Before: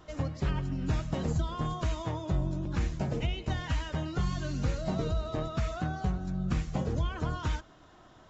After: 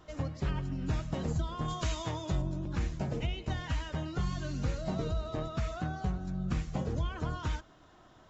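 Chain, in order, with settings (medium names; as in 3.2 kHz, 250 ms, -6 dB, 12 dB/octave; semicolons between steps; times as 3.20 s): 1.68–2.42 s: treble shelf 2.2 kHz +10 dB; trim -2.5 dB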